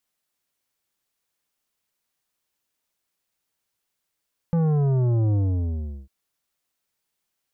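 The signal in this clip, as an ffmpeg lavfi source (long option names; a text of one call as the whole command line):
ffmpeg -f lavfi -i "aevalsrc='0.112*clip((1.55-t)/0.74,0,1)*tanh(3.35*sin(2*PI*170*1.55/log(65/170)*(exp(log(65/170)*t/1.55)-1)))/tanh(3.35)':duration=1.55:sample_rate=44100" out.wav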